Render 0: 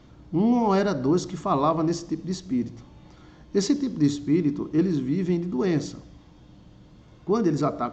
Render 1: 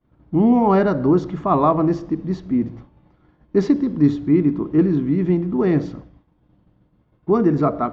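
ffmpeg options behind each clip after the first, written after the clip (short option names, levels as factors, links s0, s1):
-af "lowpass=2000,agate=range=0.0224:threshold=0.0112:ratio=3:detection=peak,volume=2"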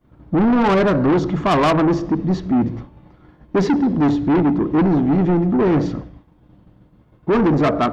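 -af "asoftclip=type=tanh:threshold=0.0891,volume=2.66"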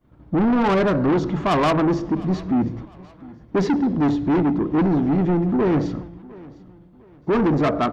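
-af "aecho=1:1:705|1410:0.0841|0.0286,volume=0.708"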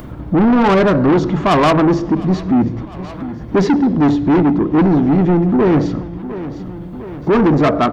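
-af "acompressor=mode=upward:threshold=0.0794:ratio=2.5,volume=2.11"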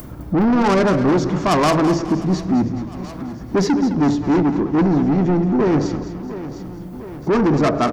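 -filter_complex "[0:a]aexciter=amount=2.4:drive=7.9:freq=4800,asplit=2[s0][s1];[s1]aecho=0:1:210|420|630|840:0.266|0.106|0.0426|0.017[s2];[s0][s2]amix=inputs=2:normalize=0,volume=0.631"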